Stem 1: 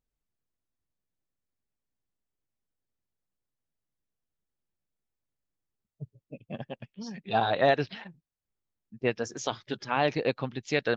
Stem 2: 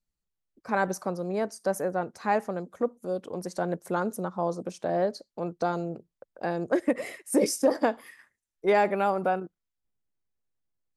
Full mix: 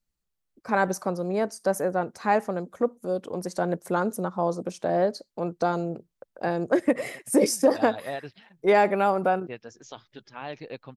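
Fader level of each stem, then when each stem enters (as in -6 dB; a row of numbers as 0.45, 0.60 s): -11.0, +3.0 dB; 0.45, 0.00 s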